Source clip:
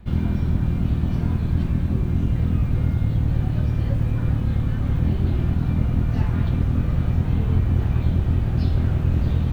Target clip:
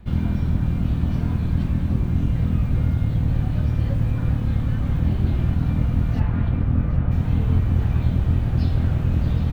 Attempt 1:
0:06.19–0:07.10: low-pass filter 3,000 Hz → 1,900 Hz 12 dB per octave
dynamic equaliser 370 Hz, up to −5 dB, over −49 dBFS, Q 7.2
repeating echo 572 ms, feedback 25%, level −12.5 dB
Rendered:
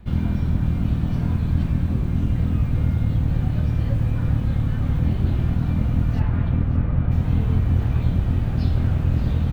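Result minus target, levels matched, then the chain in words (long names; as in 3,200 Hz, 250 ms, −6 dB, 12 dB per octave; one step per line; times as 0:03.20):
echo 197 ms early
0:06.19–0:07.10: low-pass filter 3,000 Hz → 1,900 Hz 12 dB per octave
dynamic equaliser 370 Hz, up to −5 dB, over −49 dBFS, Q 7.2
repeating echo 769 ms, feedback 25%, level −12.5 dB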